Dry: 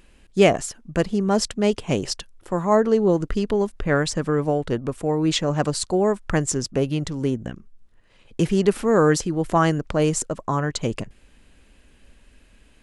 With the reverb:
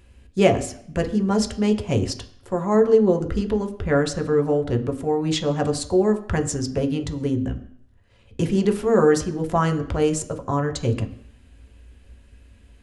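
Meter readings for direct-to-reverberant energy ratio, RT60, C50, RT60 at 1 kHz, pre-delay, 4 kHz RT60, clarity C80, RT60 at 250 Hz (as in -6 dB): 4.0 dB, 0.65 s, 14.0 dB, 0.65 s, 3 ms, 0.65 s, 16.0 dB, 0.55 s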